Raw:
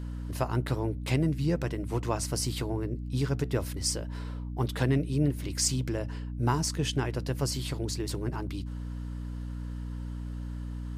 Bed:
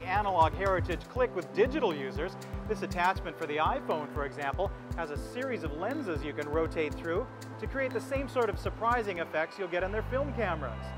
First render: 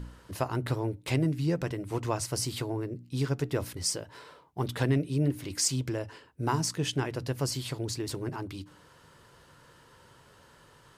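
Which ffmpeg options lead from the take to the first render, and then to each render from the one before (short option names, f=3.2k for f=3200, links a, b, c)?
-af "bandreject=f=60:t=h:w=4,bandreject=f=120:t=h:w=4,bandreject=f=180:t=h:w=4,bandreject=f=240:t=h:w=4,bandreject=f=300:t=h:w=4"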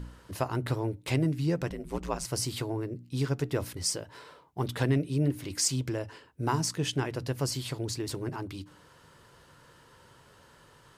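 -filter_complex "[0:a]asettb=1/sr,asplit=3[a][b][c];[a]atrim=end=1.694[d];[b]atrim=start=1.69:end=2.25,asetpts=PTS-STARTPTS,afade=t=in:d=0.004:c=qsin,afade=t=out:st=0.556:d=0.004:c=qsin,aeval=exprs='val(0)*sin(2*PI*63*n/s)':c=same[e];[c]atrim=start=2.246[f];[d][e]acrossfade=d=0.004:c1=hsin:c2=qsin[g];[g][f]acrossfade=d=0.004:c1=qsin:c2=hsin"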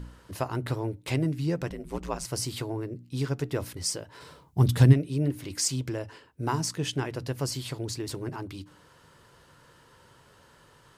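-filter_complex "[0:a]asplit=3[a][b][c];[a]afade=t=out:st=4.2:d=0.02[d];[b]bass=f=250:g=14,treble=f=4k:g=8,afade=t=in:st=4.2:d=0.02,afade=t=out:st=4.92:d=0.02[e];[c]afade=t=in:st=4.92:d=0.02[f];[d][e][f]amix=inputs=3:normalize=0"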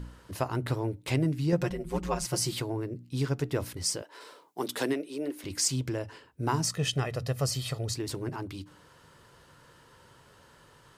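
-filter_complex "[0:a]asettb=1/sr,asplit=3[a][b][c];[a]atrim=end=1.524[d];[b]atrim=start=1.52:end=2.6,asetpts=PTS-STARTPTS,afade=t=in:d=0.004:c=qsin,afade=t=out:st=1.076:d=0.004:c=qsin,aecho=1:1:5.6:0.89,atrim=end_sample=47628[e];[c]atrim=start=2.596[f];[d][e]acrossfade=d=0.004:c1=hsin:c2=qsin[g];[g][f]acrossfade=d=0.004:c1=qsin:c2=hsin,asettb=1/sr,asplit=3[h][i][j];[h]atrim=end=4.024[k];[i]atrim=start=4.02:end=5.44,asetpts=PTS-STARTPTS,afade=t=in:d=0.004:c=qsin,afade=t=out:st=1.416:d=0.004:c=qsin,highpass=f=310:w=0.5412,highpass=f=310:w=1.3066[l];[j]atrim=start=5.436[m];[k][l]acrossfade=d=0.004:c1=hsin:c2=qsin[n];[n][m]acrossfade=d=0.004:c1=qsin:c2=hsin,asettb=1/sr,asplit=3[o][p][q];[o]atrim=end=6.644[r];[p]atrim=start=6.64:end=7.94,asetpts=PTS-STARTPTS,afade=t=in:d=0.004:c=qsin,afade=t=out:st=1.296:d=0.004:c=qsin,aecho=1:1:1.6:0.65,atrim=end_sample=57330[s];[q]atrim=start=7.936[t];[r][s]acrossfade=d=0.004:c1=hsin:c2=qsin[u];[u][t]acrossfade=d=0.004:c1=qsin:c2=hsin"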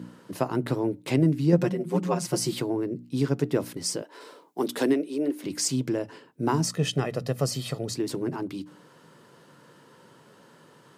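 -af "highpass=f=170:w=0.5412,highpass=f=170:w=1.3066,lowshelf=f=460:g=11"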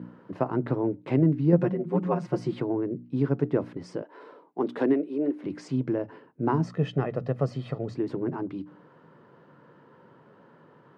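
-af "lowpass=1.6k"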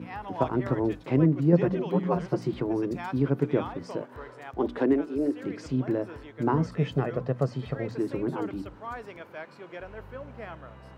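-filter_complex "[1:a]volume=-9.5dB[a];[0:a][a]amix=inputs=2:normalize=0"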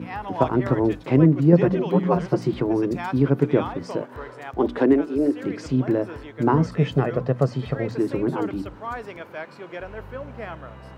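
-af "volume=6dB,alimiter=limit=-3dB:level=0:latency=1"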